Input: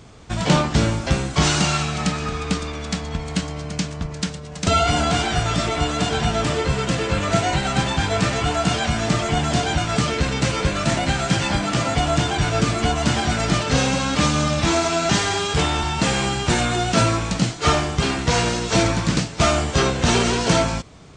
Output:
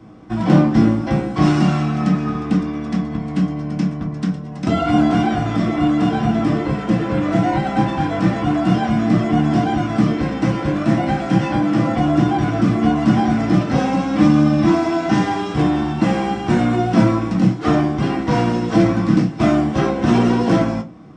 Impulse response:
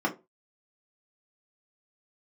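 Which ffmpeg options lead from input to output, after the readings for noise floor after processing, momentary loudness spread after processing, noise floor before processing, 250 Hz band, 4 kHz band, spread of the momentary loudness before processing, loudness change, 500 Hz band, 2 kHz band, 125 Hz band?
-28 dBFS, 6 LU, -34 dBFS, +8.5 dB, -10.0 dB, 7 LU, +3.0 dB, +1.0 dB, -4.0 dB, +2.5 dB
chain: -filter_complex "[0:a]lowshelf=f=350:g=4,acrossover=split=260[s0][s1];[s0]acontrast=34[s2];[s2][s1]amix=inputs=2:normalize=0[s3];[1:a]atrim=start_sample=2205[s4];[s3][s4]afir=irnorm=-1:irlink=0,volume=0.237"

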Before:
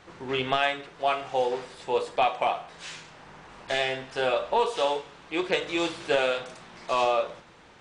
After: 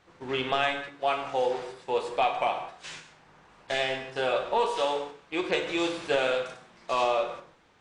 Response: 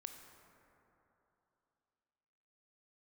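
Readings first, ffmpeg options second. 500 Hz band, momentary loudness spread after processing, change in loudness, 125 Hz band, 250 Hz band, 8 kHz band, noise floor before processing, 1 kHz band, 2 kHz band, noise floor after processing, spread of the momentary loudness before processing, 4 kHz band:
-1.0 dB, 10 LU, -1.5 dB, -2.0 dB, -0.5 dB, -1.5 dB, -53 dBFS, -1.5 dB, -1.0 dB, -59 dBFS, 15 LU, -1.5 dB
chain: -filter_complex "[0:a]agate=range=0.398:threshold=0.00794:ratio=16:detection=peak,acontrast=40[s0];[1:a]atrim=start_sample=2205,afade=t=out:st=0.24:d=0.01,atrim=end_sample=11025[s1];[s0][s1]afir=irnorm=-1:irlink=0,volume=0.841"

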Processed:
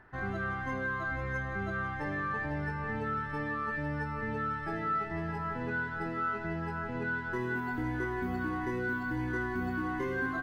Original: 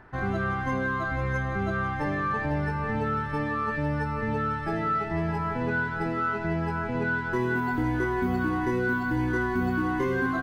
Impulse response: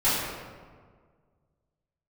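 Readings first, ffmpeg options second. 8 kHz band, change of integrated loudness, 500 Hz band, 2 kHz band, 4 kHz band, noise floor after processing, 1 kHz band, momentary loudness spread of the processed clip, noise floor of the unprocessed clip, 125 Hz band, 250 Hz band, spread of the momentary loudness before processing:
no reading, -6.5 dB, -7.5 dB, -4.5 dB, -7.0 dB, -38 dBFS, -6.0 dB, 2 LU, -32 dBFS, -8.0 dB, -7.5 dB, 2 LU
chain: -filter_complex "[0:a]equalizer=f=1800:w=2:g=4.5,bandreject=f=2300:w=25,asplit=2[s0][s1];[1:a]atrim=start_sample=2205[s2];[s1][s2]afir=irnorm=-1:irlink=0,volume=0.0251[s3];[s0][s3]amix=inputs=2:normalize=0,volume=0.398"

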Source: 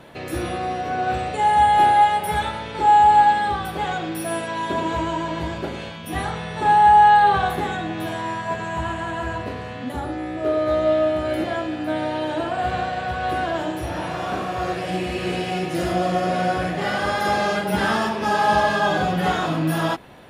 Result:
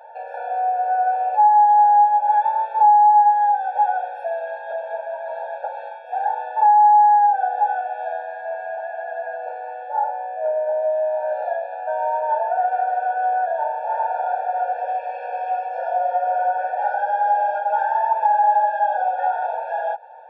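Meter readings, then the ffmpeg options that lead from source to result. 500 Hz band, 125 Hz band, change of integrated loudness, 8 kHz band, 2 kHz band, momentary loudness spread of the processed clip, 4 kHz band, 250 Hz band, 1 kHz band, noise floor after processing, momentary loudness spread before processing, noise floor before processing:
-0.5 dB, under -40 dB, +1.0 dB, under -35 dB, -6.5 dB, 16 LU, under -20 dB, under -40 dB, +2.5 dB, -34 dBFS, 13 LU, -32 dBFS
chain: -af "highpass=760,acompressor=threshold=0.0501:ratio=6,lowpass=f=960:t=q:w=4.9,afftfilt=real='re*eq(mod(floor(b*sr/1024/460),2),1)':imag='im*eq(mod(floor(b*sr/1024/460),2),1)':win_size=1024:overlap=0.75,volume=1.58"

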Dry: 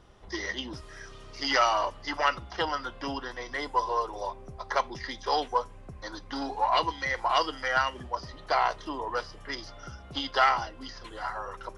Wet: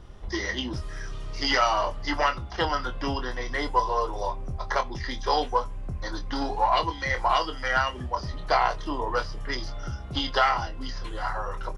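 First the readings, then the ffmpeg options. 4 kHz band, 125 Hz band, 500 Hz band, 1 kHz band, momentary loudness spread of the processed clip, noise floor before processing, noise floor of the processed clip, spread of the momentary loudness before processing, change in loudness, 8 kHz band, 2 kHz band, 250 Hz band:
+2.5 dB, +10.5 dB, +3.0 dB, +2.0 dB, 11 LU, -48 dBFS, -37 dBFS, 17 LU, +2.0 dB, no reading, +2.0 dB, +5.0 dB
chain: -filter_complex "[0:a]lowshelf=f=140:g=12,alimiter=limit=0.188:level=0:latency=1:release=451,asplit=2[s0][s1];[s1]adelay=24,volume=0.398[s2];[s0][s2]amix=inputs=2:normalize=0,volume=1.41"

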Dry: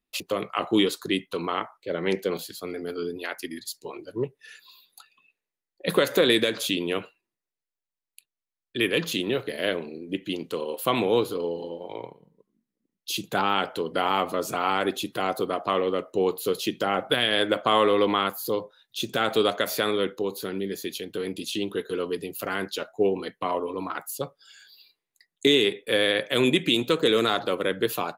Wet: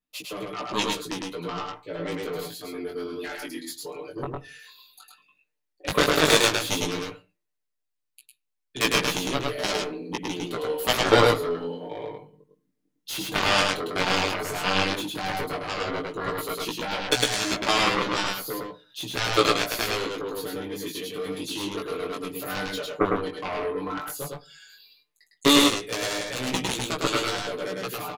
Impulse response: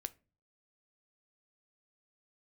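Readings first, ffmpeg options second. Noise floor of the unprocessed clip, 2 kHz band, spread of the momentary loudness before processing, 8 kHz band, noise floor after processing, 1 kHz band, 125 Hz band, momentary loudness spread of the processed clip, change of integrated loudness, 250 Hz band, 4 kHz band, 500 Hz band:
under -85 dBFS, +2.5 dB, 12 LU, +7.5 dB, -80 dBFS, +0.5 dB, +2.5 dB, 15 LU, 0.0 dB, -1.0 dB, +1.5 dB, -2.5 dB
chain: -filter_complex "[0:a]aecho=1:1:6.7:0.89,dynaudnorm=f=350:g=17:m=3.16,aeval=exprs='0.944*(cos(1*acos(clip(val(0)/0.944,-1,1)))-cos(1*PI/2))+0.237*(cos(7*acos(clip(val(0)/0.944,-1,1)))-cos(7*PI/2))':c=same,asplit=2[s0][s1];[1:a]atrim=start_sample=2205,afade=t=out:st=0.26:d=0.01,atrim=end_sample=11907,adelay=105[s2];[s1][s2]afir=irnorm=-1:irlink=0,volume=1.06[s3];[s0][s3]amix=inputs=2:normalize=0,flanger=delay=15.5:depth=6:speed=0.11,volume=0.891"

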